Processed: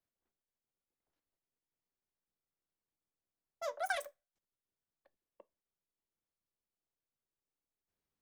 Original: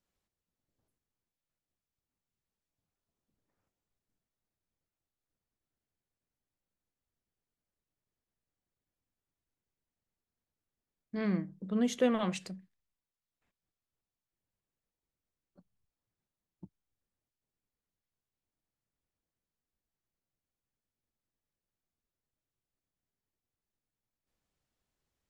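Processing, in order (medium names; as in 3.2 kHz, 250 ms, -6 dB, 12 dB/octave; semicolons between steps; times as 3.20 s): two-slope reverb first 0.64 s, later 1.6 s, from -28 dB, DRR 13.5 dB; wide varispeed 3.08×; trim -6.5 dB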